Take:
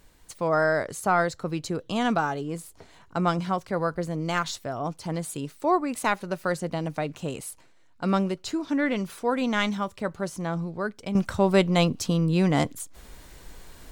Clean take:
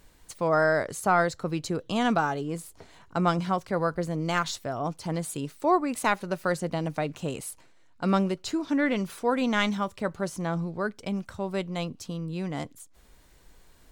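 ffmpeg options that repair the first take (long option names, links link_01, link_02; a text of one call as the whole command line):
ffmpeg -i in.wav -af "asetnsamples=nb_out_samples=441:pad=0,asendcmd='11.15 volume volume -10.5dB',volume=0dB" out.wav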